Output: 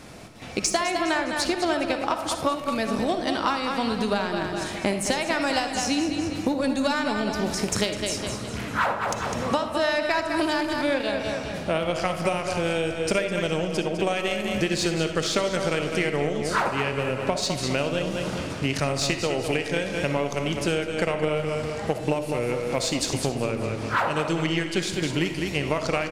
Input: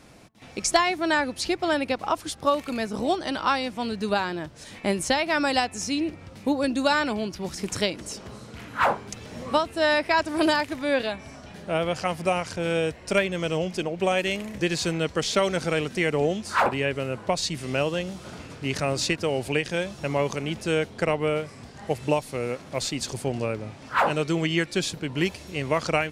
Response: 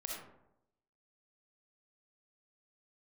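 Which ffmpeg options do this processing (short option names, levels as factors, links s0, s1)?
-filter_complex "[0:a]aecho=1:1:204|408|612|816|1020:0.355|0.145|0.0596|0.0245|0.01,aeval=exprs='0.422*(cos(1*acos(clip(val(0)/0.422,-1,1)))-cos(1*PI/2))+0.0168*(cos(7*acos(clip(val(0)/0.422,-1,1)))-cos(7*PI/2))':c=same,acompressor=threshold=0.0251:ratio=6,asplit=2[s0][s1];[1:a]atrim=start_sample=2205[s2];[s1][s2]afir=irnorm=-1:irlink=0,volume=0.841[s3];[s0][s3]amix=inputs=2:normalize=0,volume=2.11"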